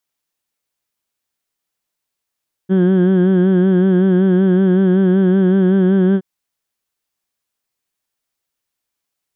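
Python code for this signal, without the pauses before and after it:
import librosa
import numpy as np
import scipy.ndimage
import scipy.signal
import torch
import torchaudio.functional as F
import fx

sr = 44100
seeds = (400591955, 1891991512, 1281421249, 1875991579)

y = fx.formant_vowel(sr, seeds[0], length_s=3.52, hz=184.0, glide_st=0.5, vibrato_hz=5.3, vibrato_st=0.65, f1_hz=300.0, f2_hz=1600.0, f3_hz=3200.0)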